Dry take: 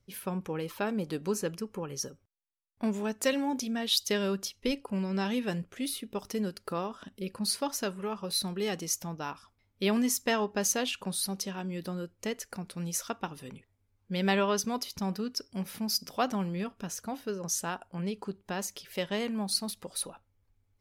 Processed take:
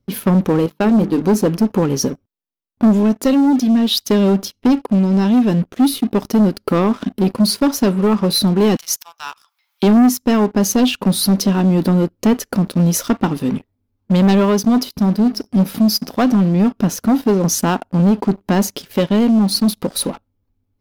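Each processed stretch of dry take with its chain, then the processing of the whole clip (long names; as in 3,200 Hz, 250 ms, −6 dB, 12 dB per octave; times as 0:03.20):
0:00.66–0:01.21: downward expander −37 dBFS + mains-hum notches 50/100/150/200/250/300/350/400/450 Hz
0:08.76–0:09.83: Bessel high-pass filter 1,600 Hz, order 8 + upward compression, threshold −45 dBFS
0:14.89–0:15.47: parametric band 6,300 Hz −8.5 dB 0.2 octaves + tuned comb filter 210 Hz, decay 0.95 s, mix 50%
whole clip: octave-band graphic EQ 250/2,000/8,000 Hz +11/−6/−10 dB; speech leveller within 4 dB 0.5 s; leveller curve on the samples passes 3; level +4 dB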